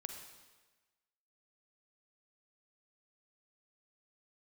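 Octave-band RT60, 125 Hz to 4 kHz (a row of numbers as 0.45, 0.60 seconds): 1.1, 1.2, 1.3, 1.3, 1.3, 1.2 seconds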